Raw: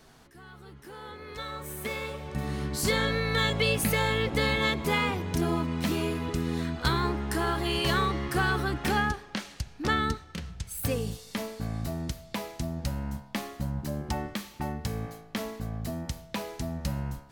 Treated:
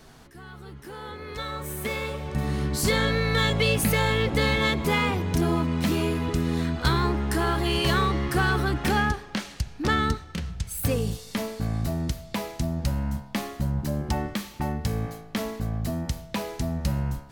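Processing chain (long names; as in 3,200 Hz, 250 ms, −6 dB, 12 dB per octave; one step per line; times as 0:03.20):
in parallel at −4 dB: soft clipping −28.5 dBFS, distortion −9 dB
on the sum: low-shelf EQ 210 Hz +3.5 dB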